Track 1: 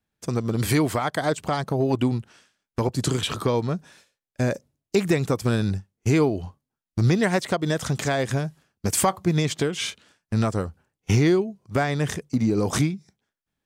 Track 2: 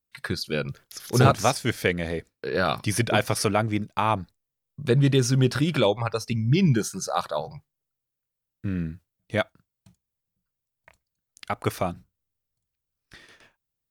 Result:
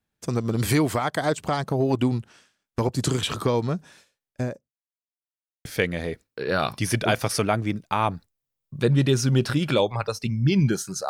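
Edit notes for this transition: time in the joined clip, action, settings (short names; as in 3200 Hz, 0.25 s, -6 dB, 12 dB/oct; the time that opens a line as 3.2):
track 1
4.21–4.75 studio fade out
4.75–5.65 mute
5.65 switch to track 2 from 1.71 s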